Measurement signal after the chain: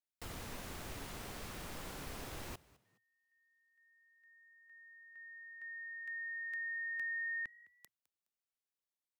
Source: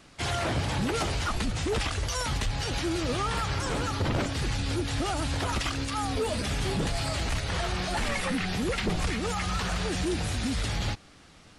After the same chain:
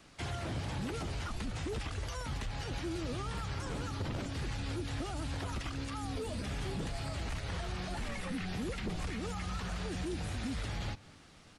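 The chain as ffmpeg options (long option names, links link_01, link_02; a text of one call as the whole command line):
ffmpeg -i in.wav -filter_complex "[0:a]acrossover=split=330|2700[link_01][link_02][link_03];[link_01]acompressor=threshold=-31dB:ratio=4[link_04];[link_02]acompressor=threshold=-39dB:ratio=4[link_05];[link_03]acompressor=threshold=-46dB:ratio=4[link_06];[link_04][link_05][link_06]amix=inputs=3:normalize=0,asplit=2[link_07][link_08];[link_08]asplit=2[link_09][link_10];[link_09]adelay=209,afreqshift=52,volume=-22dB[link_11];[link_10]adelay=418,afreqshift=104,volume=-32.5dB[link_12];[link_11][link_12]amix=inputs=2:normalize=0[link_13];[link_07][link_13]amix=inputs=2:normalize=0,volume=-4.5dB" out.wav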